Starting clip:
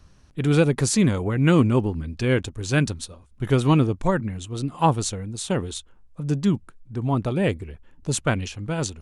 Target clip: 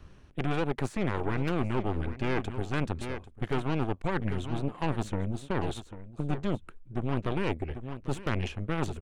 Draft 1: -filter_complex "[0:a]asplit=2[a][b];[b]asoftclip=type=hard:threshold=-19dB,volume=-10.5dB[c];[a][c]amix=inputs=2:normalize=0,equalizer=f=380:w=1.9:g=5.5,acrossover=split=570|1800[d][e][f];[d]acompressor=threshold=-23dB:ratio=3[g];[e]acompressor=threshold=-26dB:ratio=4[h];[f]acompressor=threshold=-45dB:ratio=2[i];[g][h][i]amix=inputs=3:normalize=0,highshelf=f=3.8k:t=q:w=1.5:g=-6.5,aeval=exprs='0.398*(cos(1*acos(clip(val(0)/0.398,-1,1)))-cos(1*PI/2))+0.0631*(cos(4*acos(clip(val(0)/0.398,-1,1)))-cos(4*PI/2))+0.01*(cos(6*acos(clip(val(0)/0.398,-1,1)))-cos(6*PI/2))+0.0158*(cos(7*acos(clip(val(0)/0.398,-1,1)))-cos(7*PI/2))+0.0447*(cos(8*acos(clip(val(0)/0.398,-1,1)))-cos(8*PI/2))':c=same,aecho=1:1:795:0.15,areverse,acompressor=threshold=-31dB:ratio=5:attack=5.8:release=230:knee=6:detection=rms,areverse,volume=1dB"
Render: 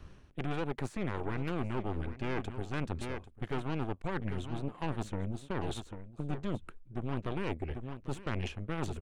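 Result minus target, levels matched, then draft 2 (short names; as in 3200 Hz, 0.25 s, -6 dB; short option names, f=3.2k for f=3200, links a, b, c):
hard clip: distortion +20 dB; compressor: peak gain reduction +5.5 dB
-filter_complex "[0:a]asplit=2[a][b];[b]asoftclip=type=hard:threshold=-9.5dB,volume=-10.5dB[c];[a][c]amix=inputs=2:normalize=0,equalizer=f=380:w=1.9:g=5.5,acrossover=split=570|1800[d][e][f];[d]acompressor=threshold=-23dB:ratio=3[g];[e]acompressor=threshold=-26dB:ratio=4[h];[f]acompressor=threshold=-45dB:ratio=2[i];[g][h][i]amix=inputs=3:normalize=0,highshelf=f=3.8k:t=q:w=1.5:g=-6.5,aeval=exprs='0.398*(cos(1*acos(clip(val(0)/0.398,-1,1)))-cos(1*PI/2))+0.0631*(cos(4*acos(clip(val(0)/0.398,-1,1)))-cos(4*PI/2))+0.01*(cos(6*acos(clip(val(0)/0.398,-1,1)))-cos(6*PI/2))+0.0158*(cos(7*acos(clip(val(0)/0.398,-1,1)))-cos(7*PI/2))+0.0447*(cos(8*acos(clip(val(0)/0.398,-1,1)))-cos(8*PI/2))':c=same,aecho=1:1:795:0.15,areverse,acompressor=threshold=-24dB:ratio=5:attack=5.8:release=230:knee=6:detection=rms,areverse,volume=1dB"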